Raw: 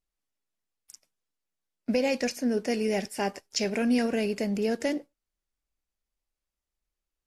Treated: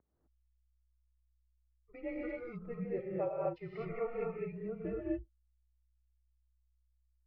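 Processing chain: expander on every frequency bin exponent 2; static phaser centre 500 Hz, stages 6; hum 60 Hz, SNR 10 dB; gated-style reverb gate 280 ms rising, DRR -4 dB; mistuned SSB -240 Hz 510–2200 Hz

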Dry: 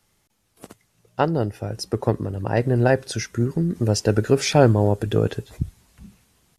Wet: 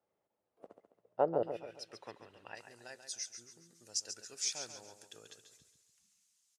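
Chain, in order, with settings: band-pass filter 570 Hz, Q 2.2, from 1.43 s 2.8 kHz, from 2.55 s 6.7 kHz; feedback delay 138 ms, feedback 41%, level -9 dB; trim -6 dB

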